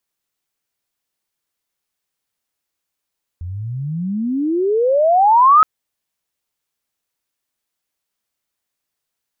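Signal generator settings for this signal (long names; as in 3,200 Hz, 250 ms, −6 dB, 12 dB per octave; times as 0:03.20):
glide logarithmic 83 Hz → 1,300 Hz −24.5 dBFS → −5.5 dBFS 2.22 s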